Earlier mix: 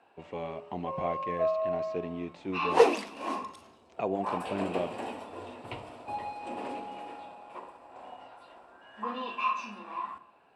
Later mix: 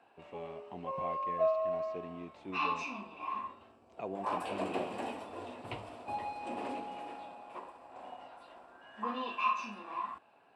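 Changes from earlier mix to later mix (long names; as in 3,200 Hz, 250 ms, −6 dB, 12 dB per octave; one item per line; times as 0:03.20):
speech −8.5 dB
second sound: muted
reverb: off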